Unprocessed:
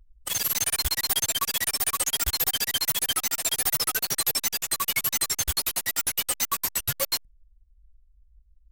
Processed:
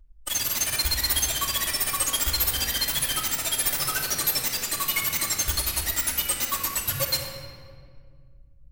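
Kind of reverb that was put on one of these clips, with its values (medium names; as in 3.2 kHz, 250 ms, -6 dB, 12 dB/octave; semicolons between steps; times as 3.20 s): simulated room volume 3200 m³, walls mixed, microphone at 2.6 m; trim -2 dB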